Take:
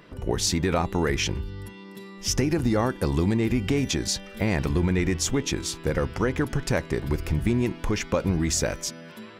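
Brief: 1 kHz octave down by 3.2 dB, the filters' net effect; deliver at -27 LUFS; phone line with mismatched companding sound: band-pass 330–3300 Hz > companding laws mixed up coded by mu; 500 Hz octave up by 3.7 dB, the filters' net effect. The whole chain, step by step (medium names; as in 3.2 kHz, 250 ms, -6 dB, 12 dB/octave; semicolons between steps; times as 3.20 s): band-pass 330–3300 Hz; peaking EQ 500 Hz +7.5 dB; peaking EQ 1 kHz -7 dB; companding laws mixed up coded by mu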